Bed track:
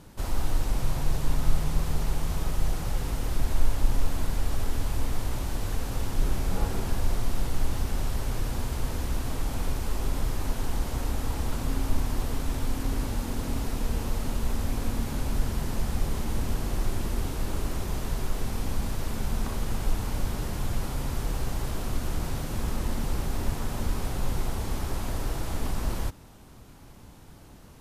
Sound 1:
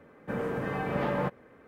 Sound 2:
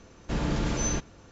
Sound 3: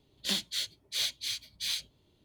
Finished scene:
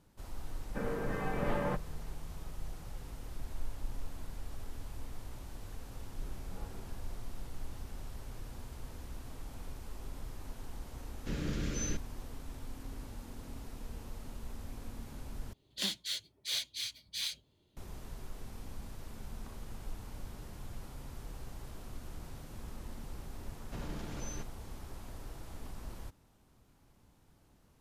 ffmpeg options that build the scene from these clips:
-filter_complex "[2:a]asplit=2[s0][s1];[0:a]volume=0.158[s2];[s0]asuperstop=centerf=860:order=4:qfactor=1.1[s3];[s1]alimiter=limit=0.075:level=0:latency=1:release=20[s4];[s2]asplit=2[s5][s6];[s5]atrim=end=15.534[s7];[3:a]atrim=end=2.24,asetpts=PTS-STARTPTS,volume=0.631[s8];[s6]atrim=start=17.766[s9];[1:a]atrim=end=1.67,asetpts=PTS-STARTPTS,volume=0.562,afade=t=in:d=0.004:c=hsin,afade=t=out:st=1.666:d=0.004:c=hsin,adelay=470[s10];[s3]atrim=end=1.31,asetpts=PTS-STARTPTS,volume=0.398,afade=t=in:d=0.004:c=hsin,afade=t=out:st=1.306:d=0.004:c=hsin,adelay=10970[s11];[s4]atrim=end=1.31,asetpts=PTS-STARTPTS,volume=0.237,afade=t=in:d=0.004:c=hsin,afade=t=out:st=1.306:d=0.004:c=hsin,adelay=23430[s12];[s7][s8]acrossfade=d=0.004:c1=hsin:c2=hsin[s13];[s13][s9]acrossfade=d=0.004:c1=hsin:c2=hsin[s14];[s14][s10][s11][s12]amix=inputs=4:normalize=0"

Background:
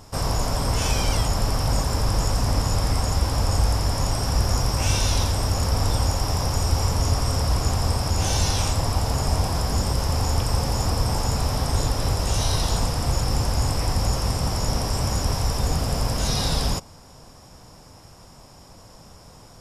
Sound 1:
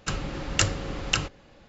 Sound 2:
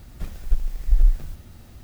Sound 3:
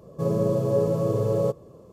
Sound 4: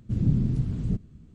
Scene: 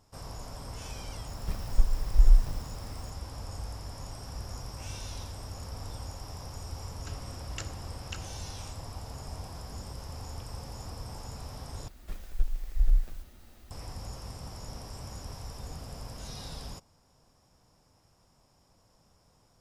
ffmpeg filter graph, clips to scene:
-filter_complex "[2:a]asplit=2[s0][s1];[0:a]volume=0.119[s2];[s1]equalizer=f=120:t=o:w=1.5:g=-11.5[s3];[s2]asplit=2[s4][s5];[s4]atrim=end=11.884[s6];[s3]atrim=end=1.83,asetpts=PTS-STARTPTS,volume=0.531[s7];[s5]atrim=start=13.706[s8];[s0]atrim=end=1.83,asetpts=PTS-STARTPTS,volume=0.794,afade=t=in:d=0.004:c=hsin,afade=t=out:st=1.826:d=0.004:c=hsin,adelay=1270[s9];[1:a]atrim=end=1.68,asetpts=PTS-STARTPTS,volume=0.133,afade=t=in:d=0.004:c=hsin,afade=t=out:st=1.676:d=0.004:c=hsin,adelay=6990[s10];[s6][s7]acrossfade=d=0.004:c1=hsin:c2=hsin[s11];[s11][s8]acrossfade=d=0.004:c1=hsin:c2=hsin[s12];[s12][s9][s10]amix=inputs=3:normalize=0"

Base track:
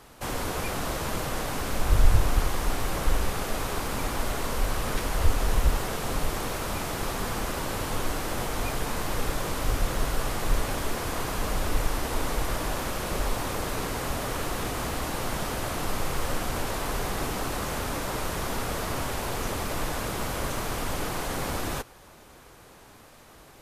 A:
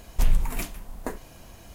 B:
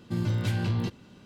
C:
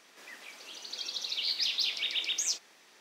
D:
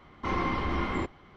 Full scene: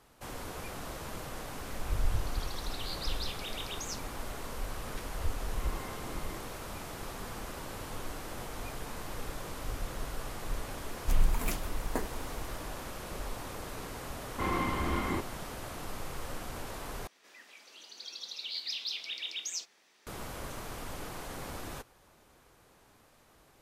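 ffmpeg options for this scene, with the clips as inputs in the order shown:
-filter_complex "[3:a]asplit=2[s0][s1];[4:a]asplit=2[s2][s3];[0:a]volume=0.282[s4];[1:a]dynaudnorm=f=220:g=3:m=2.11[s5];[s4]asplit=2[s6][s7];[s6]atrim=end=17.074[s8];[s1]atrim=end=3,asetpts=PTS-STARTPTS,volume=0.473[s9];[s7]atrim=start=20.066[s10];[s0]atrim=end=3,asetpts=PTS-STARTPTS,volume=0.299,afade=t=in:d=0.004:c=hsin,afade=t=out:st=2.996:d=0.004:c=hsin,adelay=1420[s11];[s2]atrim=end=1.36,asetpts=PTS-STARTPTS,volume=0.15,afade=t=in:d=0.004:c=hsin,afade=t=out:st=1.356:d=0.004:c=hsin,adelay=5350[s12];[s5]atrim=end=1.74,asetpts=PTS-STARTPTS,volume=0.398,afade=t=in:d=0.004:c=hsin,afade=t=out:st=1.736:d=0.004:c=hsin,adelay=10890[s13];[s3]atrim=end=1.36,asetpts=PTS-STARTPTS,volume=0.75,afade=t=in:d=0.004:c=hsin,afade=t=out:st=1.356:d=0.004:c=hsin,adelay=14150[s14];[s8][s9]acrossfade=d=0.004:c1=hsin:c2=hsin[s15];[s15][s10]acrossfade=d=0.004:c1=hsin:c2=hsin[s16];[s16][s11][s12][s13][s14]amix=inputs=5:normalize=0"

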